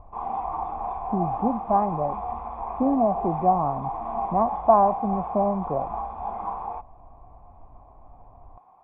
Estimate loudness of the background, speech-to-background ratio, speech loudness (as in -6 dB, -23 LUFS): -31.5 LUFS, 7.0 dB, -24.5 LUFS